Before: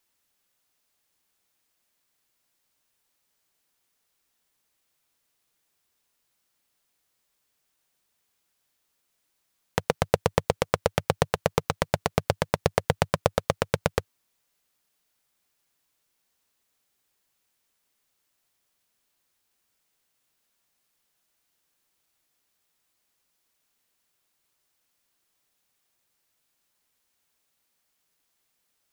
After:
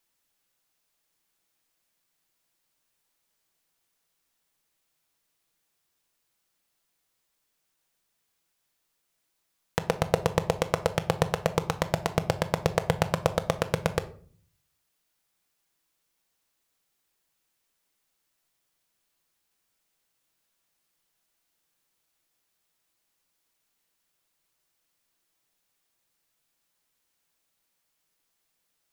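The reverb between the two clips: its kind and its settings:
rectangular room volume 490 cubic metres, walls furnished, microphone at 0.68 metres
level −2 dB

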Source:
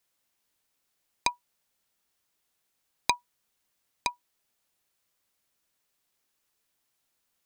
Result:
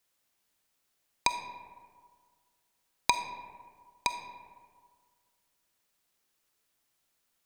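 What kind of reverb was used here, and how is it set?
comb and all-pass reverb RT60 1.8 s, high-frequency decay 0.45×, pre-delay 5 ms, DRR 7.5 dB

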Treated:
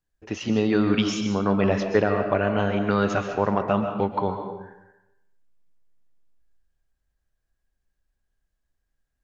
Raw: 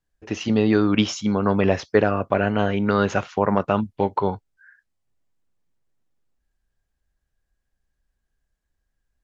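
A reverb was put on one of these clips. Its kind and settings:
comb and all-pass reverb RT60 0.92 s, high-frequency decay 0.7×, pre-delay 90 ms, DRR 5.5 dB
level −3 dB

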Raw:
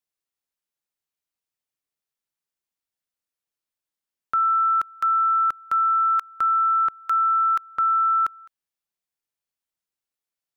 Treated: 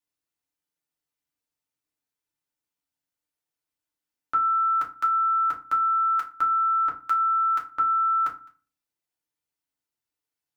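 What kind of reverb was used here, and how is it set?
feedback delay network reverb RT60 0.33 s, low-frequency decay 1.6×, high-frequency decay 0.65×, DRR −2 dB
level −3.5 dB

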